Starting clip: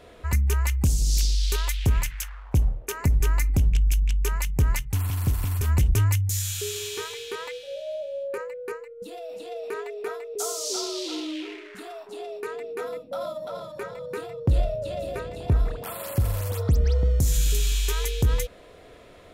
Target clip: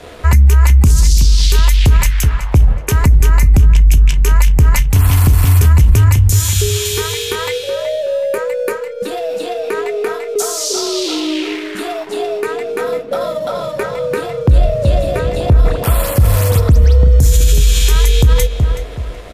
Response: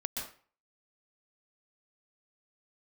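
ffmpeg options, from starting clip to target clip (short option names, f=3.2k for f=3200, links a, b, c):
-filter_complex "[0:a]asettb=1/sr,asplit=3[a][b][c];[a]atrim=end=6.854[d];[b]atrim=start=6.85:end=8.85,asetpts=PTS-STARTPTS,afade=t=in:d=0.004:c=qsin,afade=t=out:st=1.996:d=0.004:c=qsin,highshelf=f=9.4k:g=10[e];[c]atrim=start=8.846[f];[d][e]acrossfade=d=0.004:c1=hsin:c2=qsin[g];[g][f]acrossfade=d=0.004:c1=qsin:c2=hsin,acrossover=split=220[h][i];[i]acompressor=threshold=-33dB:ratio=6[j];[h][j]amix=inputs=2:normalize=0,aeval=exprs='sgn(val(0))*max(abs(val(0))-0.00168,0)':c=same,asplit=2[k][l];[l]adelay=14,volume=-12.5dB[m];[k][m]amix=inputs=2:normalize=0,asplit=2[n][o];[o]adelay=374,lowpass=f=3.4k:p=1,volume=-10dB,asplit=2[p][q];[q]adelay=374,lowpass=f=3.4k:p=1,volume=0.33,asplit=2[r][s];[s]adelay=374,lowpass=f=3.4k:p=1,volume=0.33,asplit=2[t][u];[u]adelay=374,lowpass=f=3.4k:p=1,volume=0.33[v];[n][p][r][t][v]amix=inputs=5:normalize=0,alimiter=level_in=19dB:limit=-1dB:release=50:level=0:latency=1,volume=-1dB" -ar 32000 -c:a libmp3lame -b:a 96k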